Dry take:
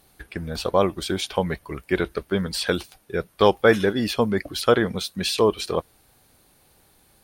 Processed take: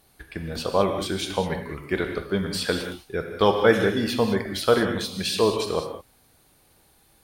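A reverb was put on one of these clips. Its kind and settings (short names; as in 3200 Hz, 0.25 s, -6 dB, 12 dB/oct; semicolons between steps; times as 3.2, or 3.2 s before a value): non-linear reverb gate 0.23 s flat, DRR 4 dB; gain -2.5 dB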